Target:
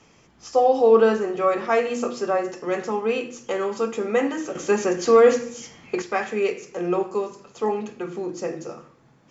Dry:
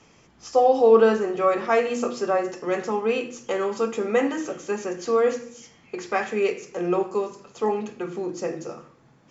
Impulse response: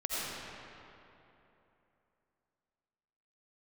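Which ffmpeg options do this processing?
-filter_complex "[0:a]asettb=1/sr,asplit=3[link_01][link_02][link_03];[link_01]atrim=end=4.554[link_04];[link_02]atrim=start=4.55:end=6.02,asetpts=PTS-STARTPTS,afade=type=in:duration=0.004:curve=qsin,afade=type=out:start_time=1.466:duration=0.004:curve=qsin,acontrast=87[link_05];[link_03]atrim=start=6.016[link_06];[link_04][link_05]acrossfade=duration=0.004:curve1=hsin:curve2=qsin[link_07];[link_07][link_06]acrossfade=duration=0.004:curve1=qsin:curve2=hsin"

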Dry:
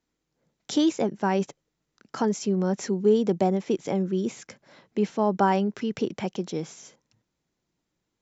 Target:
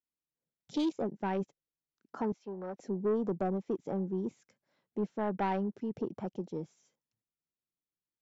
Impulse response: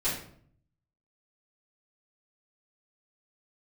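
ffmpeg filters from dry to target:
-filter_complex "[0:a]afwtdn=0.0158,asoftclip=type=tanh:threshold=-17dB,asettb=1/sr,asplit=3[link_01][link_02][link_03];[link_01]atrim=end=2.324[link_04];[link_02]atrim=start=2.32:end=2.8,asetpts=PTS-STARTPTS,afade=type=in:duration=0.004:curve=qsin,afade=type=out:start_time=0.476:duration=0.004:curve=qsin,acrossover=split=410 4600:gain=0.2 1 0.0794[link_05][link_06][link_07];[link_05][link_06][link_07]amix=inputs=3:normalize=0[link_08];[link_03]atrim=start=2.796[link_09];[link_04][link_08]acrossfade=duration=0.004:curve1=hsin:curve2=qsin[link_10];[link_10][link_09]acrossfade=duration=0.004:curve1=qsin:curve2=hsin,volume=-7dB"

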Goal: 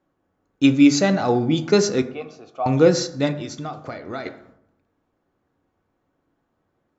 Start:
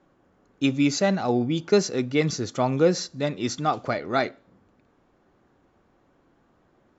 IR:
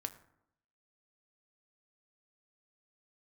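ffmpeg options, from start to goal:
-filter_complex "[0:a]agate=range=-14dB:threshold=-54dB:ratio=16:detection=peak,asettb=1/sr,asplit=3[link_01][link_02][link_03];[link_01]atrim=end=2.024[link_04];[link_02]atrim=start=2.02:end=2.66,asetpts=PTS-STARTPTS,afade=type=in:duration=0.004:curve=qsin,afade=type=out:start_time=0.636:duration=0.004:curve=qsin,asplit=3[link_05][link_06][link_07];[link_05]bandpass=frequency=730:width_type=q:width=8,volume=0dB[link_08];[link_06]bandpass=frequency=1090:width_type=q:width=8,volume=-6dB[link_09];[link_07]bandpass=frequency=2440:width_type=q:width=8,volume=-9dB[link_10];[link_08][link_09][link_10]amix=inputs=3:normalize=0[link_11];[link_03]atrim=start=2.656[link_12];[link_04][link_11]acrossfade=duration=0.004:curve1=hsin:curve2=qsin[link_13];[link_13][link_12]acrossfade=duration=0.004:curve1=qsin:curve2=hsin,asplit=3[link_14][link_15][link_16];[link_14]afade=type=out:start_time=3.31:duration=0.02[link_17];[link_15]acompressor=threshold=-34dB:ratio=6,afade=type=in:start_time=3.31:duration=0.02,afade=type=out:start_time=4.25:duration=0.02[link_18];[link_16]afade=type=in:start_time=4.25:duration=0.02[link_19];[link_17][link_18][link_19]amix=inputs=3:normalize=0[link_20];[1:a]atrim=start_sample=2205,asetrate=42777,aresample=44100[link_21];[link_20][link_21]afir=irnorm=-1:irlink=0,volume=6.5dB"

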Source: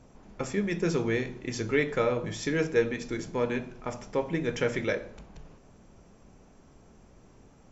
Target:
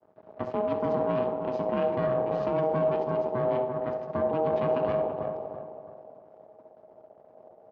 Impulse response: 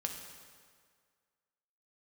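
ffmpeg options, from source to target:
-filter_complex "[0:a]agate=range=-33dB:threshold=-49dB:ratio=3:detection=peak,asplit=2[link_01][link_02];[link_02]adelay=331,lowpass=frequency=910:poles=1,volume=-8.5dB,asplit=2[link_03][link_04];[link_04]adelay=331,lowpass=frequency=910:poles=1,volume=0.42,asplit=2[link_05][link_06];[link_06]adelay=331,lowpass=frequency=910:poles=1,volume=0.42,asplit=2[link_07][link_08];[link_08]adelay=331,lowpass=frequency=910:poles=1,volume=0.42,asplit=2[link_09][link_10];[link_10]adelay=331,lowpass=frequency=910:poles=1,volume=0.42[link_11];[link_01][link_03][link_05][link_07][link_09][link_11]amix=inputs=6:normalize=0,aeval=exprs='max(val(0),0)':channel_layout=same,asplit=2[link_12][link_13];[link_13]asubboost=boost=10.5:cutoff=240[link_14];[1:a]atrim=start_sample=2205,adelay=66[link_15];[link_14][link_15]afir=irnorm=-1:irlink=0,volume=-13dB[link_16];[link_12][link_16]amix=inputs=2:normalize=0,aeval=exprs='val(0)*sin(2*PI*630*n/s)':channel_layout=same,lowpass=frequency=4500:width=0.5412,lowpass=frequency=4500:width=1.3066,tiltshelf=frequency=1400:gain=10,alimiter=limit=-17dB:level=0:latency=1:release=14,highpass=120"

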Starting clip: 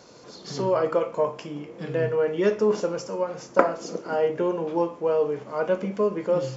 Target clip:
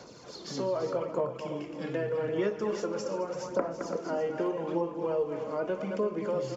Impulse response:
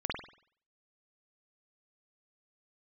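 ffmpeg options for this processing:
-filter_complex "[0:a]asplit=2[link_01][link_02];[link_02]adelay=215.7,volume=-10dB,highshelf=frequency=4000:gain=-4.85[link_03];[link_01][link_03]amix=inputs=2:normalize=0,aphaser=in_gain=1:out_gain=1:delay=3.7:decay=0.43:speed=0.82:type=sinusoidal,acrossover=split=240|660[link_04][link_05][link_06];[link_04]acompressor=threshold=-39dB:ratio=4[link_07];[link_05]acompressor=threshold=-30dB:ratio=4[link_08];[link_06]acompressor=threshold=-37dB:ratio=4[link_09];[link_07][link_08][link_09]amix=inputs=3:normalize=0,asplit=2[link_10][link_11];[link_11]aecho=0:1:336:0.299[link_12];[link_10][link_12]amix=inputs=2:normalize=0,volume=-2dB"

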